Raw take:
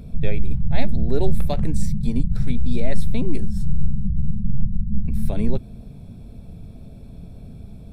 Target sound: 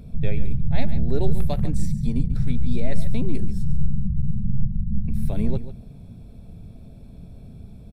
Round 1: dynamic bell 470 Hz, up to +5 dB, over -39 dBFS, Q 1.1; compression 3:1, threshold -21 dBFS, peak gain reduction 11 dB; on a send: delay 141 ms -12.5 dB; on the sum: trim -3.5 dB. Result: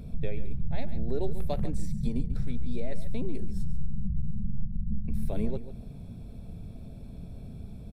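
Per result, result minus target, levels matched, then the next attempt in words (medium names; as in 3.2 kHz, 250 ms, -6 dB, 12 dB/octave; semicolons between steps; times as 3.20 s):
compression: peak gain reduction +11 dB; 500 Hz band +5.5 dB
dynamic bell 470 Hz, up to +5 dB, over -39 dBFS, Q 1.1; on a send: delay 141 ms -12.5 dB; on the sum: trim -3.5 dB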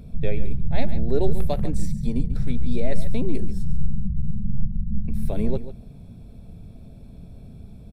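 500 Hz band +5.5 dB
dynamic bell 120 Hz, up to +5 dB, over -39 dBFS, Q 1.1; on a send: delay 141 ms -12.5 dB; on the sum: trim -3.5 dB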